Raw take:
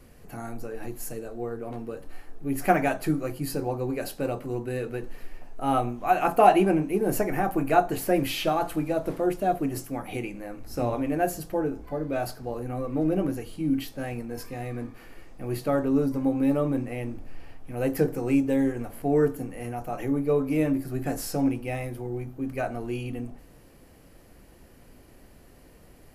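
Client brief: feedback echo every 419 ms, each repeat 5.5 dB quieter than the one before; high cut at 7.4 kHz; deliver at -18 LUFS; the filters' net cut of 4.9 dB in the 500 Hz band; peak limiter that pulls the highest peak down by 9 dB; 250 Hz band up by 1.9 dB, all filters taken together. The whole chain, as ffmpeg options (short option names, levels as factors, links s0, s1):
-af "lowpass=7400,equalizer=f=250:t=o:g=5,equalizer=f=500:t=o:g=-8.5,alimiter=limit=0.141:level=0:latency=1,aecho=1:1:419|838|1257|1676|2095|2514|2933:0.531|0.281|0.149|0.079|0.0419|0.0222|0.0118,volume=3.16"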